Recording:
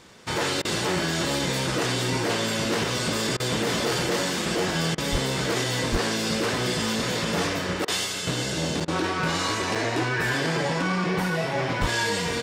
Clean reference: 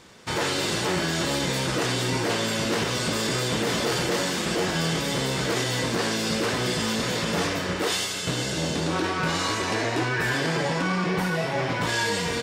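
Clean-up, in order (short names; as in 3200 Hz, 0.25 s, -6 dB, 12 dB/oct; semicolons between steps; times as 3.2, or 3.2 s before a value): 5.11–5.23 HPF 140 Hz 24 dB/oct; 5.91–6.03 HPF 140 Hz 24 dB/oct; 11.8–11.92 HPF 140 Hz 24 dB/oct; interpolate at 8.8/9.75, 5.6 ms; interpolate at 0.62/3.37/4.95/7.85/8.85, 28 ms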